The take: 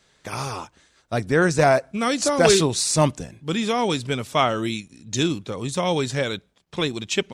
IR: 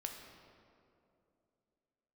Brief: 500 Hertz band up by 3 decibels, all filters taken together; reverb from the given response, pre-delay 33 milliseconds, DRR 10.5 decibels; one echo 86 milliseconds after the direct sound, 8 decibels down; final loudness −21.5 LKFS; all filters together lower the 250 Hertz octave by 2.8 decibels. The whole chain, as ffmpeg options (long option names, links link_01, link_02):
-filter_complex "[0:a]equalizer=frequency=250:width_type=o:gain=-6.5,equalizer=frequency=500:width_type=o:gain=5.5,aecho=1:1:86:0.398,asplit=2[link_01][link_02];[1:a]atrim=start_sample=2205,adelay=33[link_03];[link_02][link_03]afir=irnorm=-1:irlink=0,volume=-9dB[link_04];[link_01][link_04]amix=inputs=2:normalize=0,volume=-1.5dB"